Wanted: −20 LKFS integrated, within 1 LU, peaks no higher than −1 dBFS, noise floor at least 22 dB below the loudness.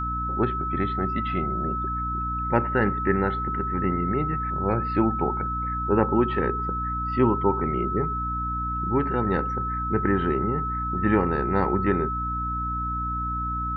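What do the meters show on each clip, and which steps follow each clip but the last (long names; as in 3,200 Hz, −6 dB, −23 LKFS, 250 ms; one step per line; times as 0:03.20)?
mains hum 60 Hz; hum harmonics up to 300 Hz; level of the hum −29 dBFS; interfering tone 1,300 Hz; level of the tone −27 dBFS; integrated loudness −25.0 LKFS; sample peak −6.0 dBFS; target loudness −20.0 LKFS
→ mains-hum notches 60/120/180/240/300 Hz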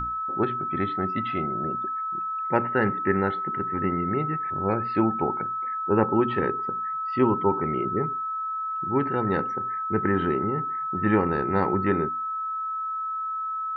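mains hum none found; interfering tone 1,300 Hz; level of the tone −27 dBFS
→ notch filter 1,300 Hz, Q 30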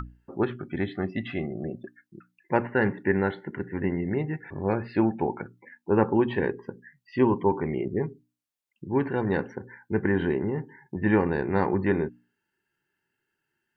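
interfering tone none found; integrated loudness −27.5 LKFS; sample peak −7.5 dBFS; target loudness −20.0 LKFS
→ level +7.5 dB
brickwall limiter −1 dBFS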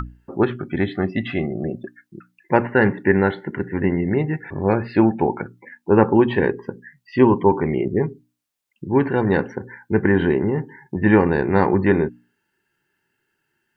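integrated loudness −20.0 LKFS; sample peak −1.0 dBFS; background noise floor −74 dBFS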